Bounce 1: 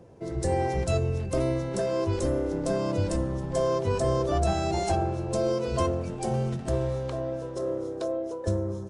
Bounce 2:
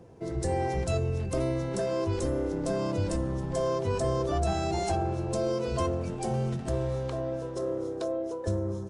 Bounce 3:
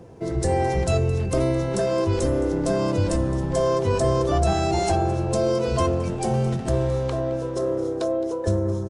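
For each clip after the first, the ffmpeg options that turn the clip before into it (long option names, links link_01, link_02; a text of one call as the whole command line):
ffmpeg -i in.wav -filter_complex "[0:a]bandreject=frequency=570:width=12,asplit=2[link_01][link_02];[link_02]alimiter=limit=-24dB:level=0:latency=1,volume=-1dB[link_03];[link_01][link_03]amix=inputs=2:normalize=0,volume=-5.5dB" out.wav
ffmpeg -i in.wav -af "aecho=1:1:216:0.141,volume=7dB" out.wav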